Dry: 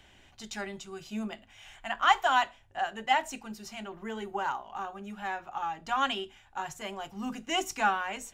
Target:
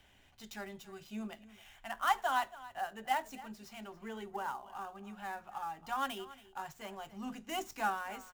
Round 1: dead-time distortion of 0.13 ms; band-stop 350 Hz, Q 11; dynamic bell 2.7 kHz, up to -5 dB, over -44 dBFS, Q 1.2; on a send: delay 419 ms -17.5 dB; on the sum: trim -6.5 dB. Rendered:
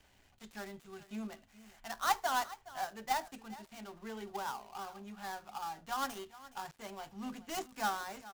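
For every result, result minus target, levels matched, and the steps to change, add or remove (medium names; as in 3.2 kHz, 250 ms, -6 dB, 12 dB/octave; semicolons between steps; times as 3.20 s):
echo 139 ms late; dead-time distortion: distortion +11 dB
change: delay 280 ms -17.5 dB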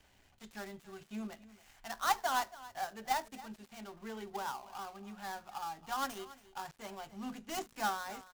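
dead-time distortion: distortion +11 dB
change: dead-time distortion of 0.055 ms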